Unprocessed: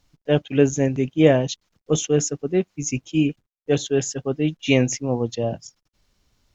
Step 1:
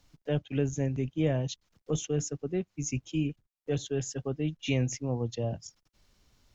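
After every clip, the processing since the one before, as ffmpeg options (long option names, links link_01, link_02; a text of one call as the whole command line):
ffmpeg -i in.wav -filter_complex "[0:a]acrossover=split=120[link_01][link_02];[link_02]acompressor=threshold=-39dB:ratio=2[link_03];[link_01][link_03]amix=inputs=2:normalize=0" out.wav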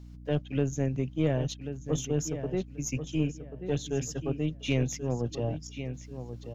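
ffmpeg -i in.wav -filter_complex "[0:a]asplit=2[link_01][link_02];[link_02]adelay=1086,lowpass=frequency=3500:poles=1,volume=-9.5dB,asplit=2[link_03][link_04];[link_04]adelay=1086,lowpass=frequency=3500:poles=1,volume=0.26,asplit=2[link_05][link_06];[link_06]adelay=1086,lowpass=frequency=3500:poles=1,volume=0.26[link_07];[link_01][link_03][link_05][link_07]amix=inputs=4:normalize=0,aeval=exprs='val(0)+0.00562*(sin(2*PI*60*n/s)+sin(2*PI*2*60*n/s)/2+sin(2*PI*3*60*n/s)/3+sin(2*PI*4*60*n/s)/4+sin(2*PI*5*60*n/s)/5)':channel_layout=same,aeval=exprs='0.178*(cos(1*acos(clip(val(0)/0.178,-1,1)))-cos(1*PI/2))+0.0112*(cos(4*acos(clip(val(0)/0.178,-1,1)))-cos(4*PI/2))+0.00126*(cos(8*acos(clip(val(0)/0.178,-1,1)))-cos(8*PI/2))':channel_layout=same" out.wav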